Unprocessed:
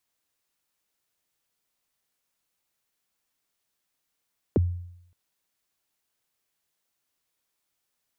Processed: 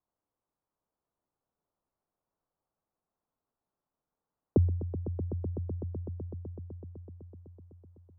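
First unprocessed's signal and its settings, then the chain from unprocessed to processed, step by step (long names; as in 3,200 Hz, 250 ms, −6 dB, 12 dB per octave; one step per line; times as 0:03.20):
synth kick length 0.57 s, from 530 Hz, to 88 Hz, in 22 ms, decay 0.75 s, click off, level −15.5 dB
low-pass filter 1,100 Hz 24 dB per octave
on a send: echo that builds up and dies away 126 ms, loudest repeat 5, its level −13 dB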